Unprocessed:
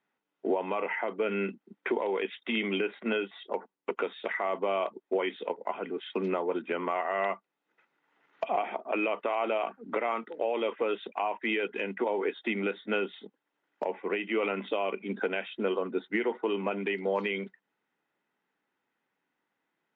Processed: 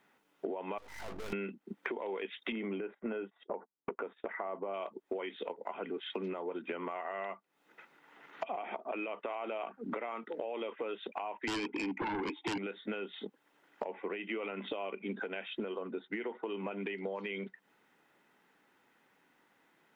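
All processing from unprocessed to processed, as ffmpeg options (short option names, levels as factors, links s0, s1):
-filter_complex "[0:a]asettb=1/sr,asplit=3[s0][s1][s2];[s0]atrim=end=0.784[s3];[s1]atrim=start=0.78:end=1.33,asetpts=PTS-STARTPTS,afade=t=in:d=0.004:c=qsin,afade=t=out:st=0.546:d=0.004:c=qsin,aeval=exprs='(tanh(112*val(0)+0.55)-tanh(0.55))/112':c=same,aeval=exprs='val(0)+0.001*(sin(2*PI*50*n/s)+sin(2*PI*2*50*n/s)/2+sin(2*PI*3*50*n/s)/3+sin(2*PI*4*50*n/s)/4+sin(2*PI*5*50*n/s)/5)':c=same,aeval=exprs='max(val(0),0)':c=same[s4];[s2]atrim=start=1.326[s5];[s3][s4]acrossfade=d=0.004:c1=hsin:c2=qsin[s6];[s6][s5]acrossfade=d=0.004:c1=qsin:c2=hsin,asettb=1/sr,asplit=3[s7][s8][s9];[s7]atrim=end=2.524[s10];[s8]atrim=start=2.52:end=4.74,asetpts=PTS-STARTPTS,afade=t=in:d=0.004:c=qsin,afade=t=out:st=2.216:d=0.004:c=qsin,agate=range=0.126:threshold=0.00447:ratio=16:release=100:detection=peak,lowpass=1400[s11];[s9]atrim=start=4.736[s12];[s10][s11]acrossfade=d=0.004:c1=hsin:c2=qsin[s13];[s13][s12]acrossfade=d=0.004:c1=qsin:c2=hsin,asettb=1/sr,asplit=3[s14][s15][s16];[s14]atrim=end=11.474[s17];[s15]atrim=start=11.47:end=12.58,asetpts=PTS-STARTPTS,afade=t=in:d=0.004:c=qsin,afade=t=out:st=1.106:d=0.004:c=qsin,asplit=3[s18][s19][s20];[s18]bandpass=f=300:t=q:w=8,volume=1[s21];[s19]bandpass=f=870:t=q:w=8,volume=0.501[s22];[s20]bandpass=f=2240:t=q:w=8,volume=0.355[s23];[s21][s22][s23]amix=inputs=3:normalize=0,aeval=exprs='0.0794*sin(PI/2*7.94*val(0)/0.0794)':c=same[s24];[s16]atrim=start=12.576[s25];[s17][s24]acrossfade=d=0.004:c1=hsin:c2=qsin[s26];[s26][s25]acrossfade=d=0.004:c1=qsin:c2=hsin,alimiter=limit=0.0631:level=0:latency=1:release=278,acompressor=threshold=0.00355:ratio=6,volume=3.98"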